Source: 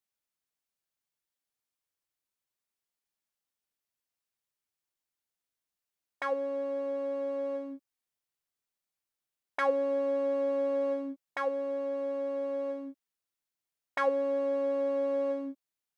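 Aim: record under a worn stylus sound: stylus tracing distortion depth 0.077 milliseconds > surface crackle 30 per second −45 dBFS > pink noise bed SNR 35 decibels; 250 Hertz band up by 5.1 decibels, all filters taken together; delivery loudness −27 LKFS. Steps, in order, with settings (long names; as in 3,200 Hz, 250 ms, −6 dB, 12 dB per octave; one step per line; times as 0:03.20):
parametric band 250 Hz +5.5 dB
stylus tracing distortion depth 0.077 ms
surface crackle 30 per second −45 dBFS
pink noise bed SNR 35 dB
level +4 dB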